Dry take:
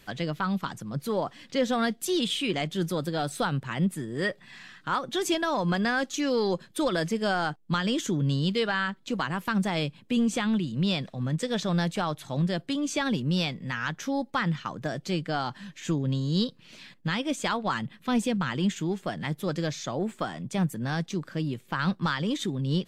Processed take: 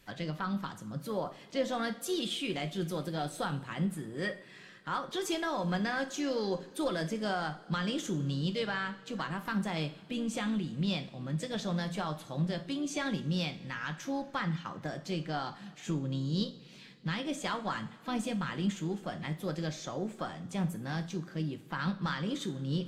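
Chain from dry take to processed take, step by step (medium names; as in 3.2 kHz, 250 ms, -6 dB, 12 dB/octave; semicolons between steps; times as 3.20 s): harmony voices +4 st -17 dB; two-slope reverb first 0.4 s, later 3.2 s, from -20 dB, DRR 6.5 dB; trim -7.5 dB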